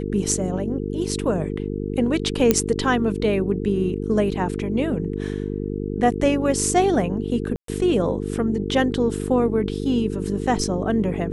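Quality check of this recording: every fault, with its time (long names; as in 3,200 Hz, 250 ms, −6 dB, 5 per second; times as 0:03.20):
mains buzz 50 Hz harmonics 9 −27 dBFS
0:02.51: click −2 dBFS
0:07.56–0:07.68: drop-out 123 ms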